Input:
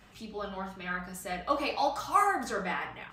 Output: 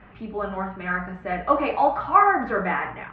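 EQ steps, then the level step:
low-pass filter 2,200 Hz 24 dB per octave
+9.0 dB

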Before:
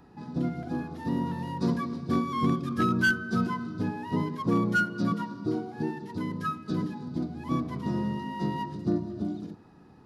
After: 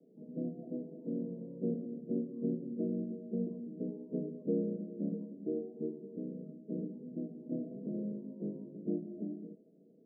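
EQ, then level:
high-pass filter 240 Hz 24 dB per octave
Chebyshev low-pass with heavy ripple 660 Hz, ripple 9 dB
+1.0 dB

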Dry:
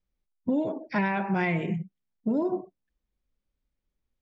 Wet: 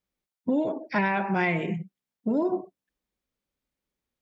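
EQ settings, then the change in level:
high-pass filter 220 Hz 6 dB per octave
+3.0 dB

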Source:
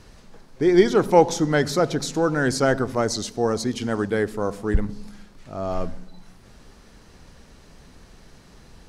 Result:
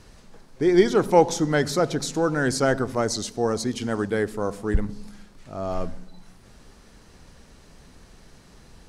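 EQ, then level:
parametric band 8,900 Hz +3 dB 0.77 octaves
−1.5 dB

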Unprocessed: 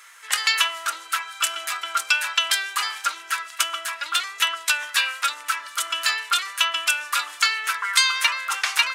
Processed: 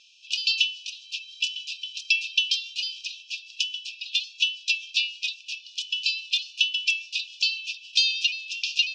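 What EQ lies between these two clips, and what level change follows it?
linear-phase brick-wall high-pass 2,400 Hz
elliptic low-pass filter 5,500 Hz, stop band 80 dB
0.0 dB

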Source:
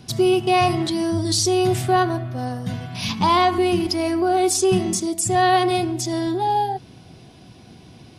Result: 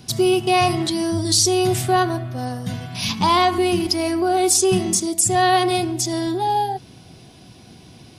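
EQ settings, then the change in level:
high-shelf EQ 4,400 Hz +7 dB
0.0 dB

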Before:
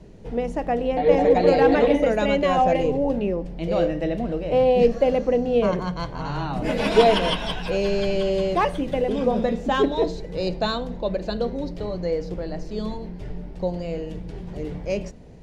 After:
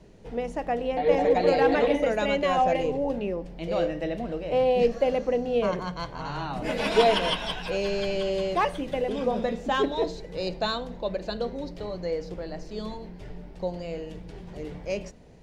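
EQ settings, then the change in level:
low-shelf EQ 460 Hz −6.5 dB
−1.5 dB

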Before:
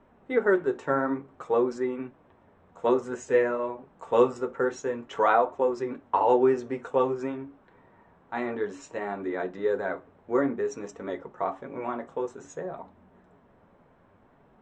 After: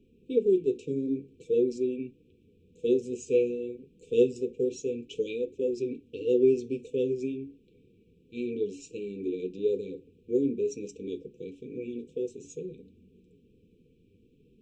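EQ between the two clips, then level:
linear-phase brick-wall band-stop 510–2,300 Hz
0.0 dB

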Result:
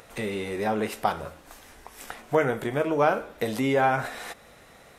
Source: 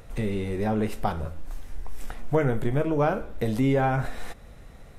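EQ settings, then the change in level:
high-pass filter 630 Hz 6 dB per octave
+5.5 dB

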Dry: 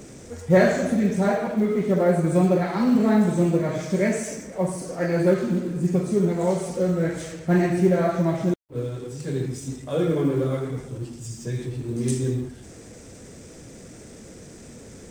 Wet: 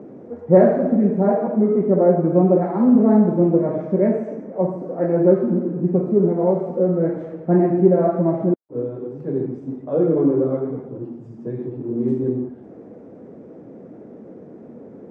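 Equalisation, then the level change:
flat-topped band-pass 450 Hz, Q 0.61
low-shelf EQ 420 Hz +5.5 dB
+3.0 dB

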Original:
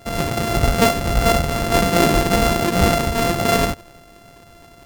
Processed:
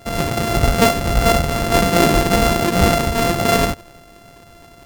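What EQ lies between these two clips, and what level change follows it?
no EQ move
+1.5 dB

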